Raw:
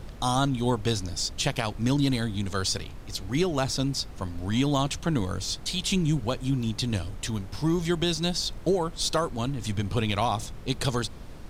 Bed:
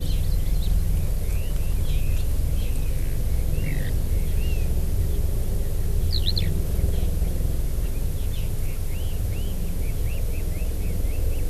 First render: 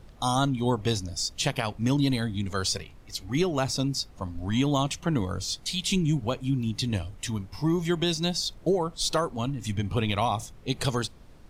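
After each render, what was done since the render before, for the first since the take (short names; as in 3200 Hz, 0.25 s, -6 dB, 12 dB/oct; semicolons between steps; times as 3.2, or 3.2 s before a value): noise print and reduce 9 dB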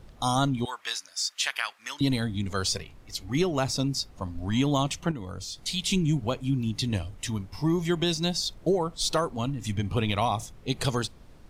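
0.65–2.01 resonant high-pass 1500 Hz, resonance Q 1.9; 5.11–5.63 compressor 4:1, threshold -34 dBFS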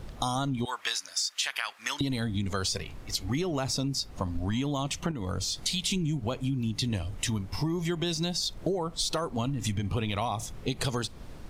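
in parallel at +2.5 dB: limiter -21 dBFS, peak gain reduction 8 dB; on the sum: compressor, threshold -27 dBFS, peak gain reduction 11.5 dB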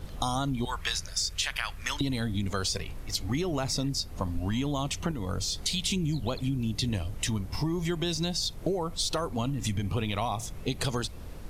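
add bed -19 dB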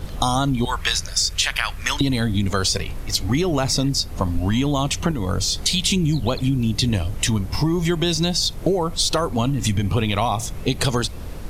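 gain +9.5 dB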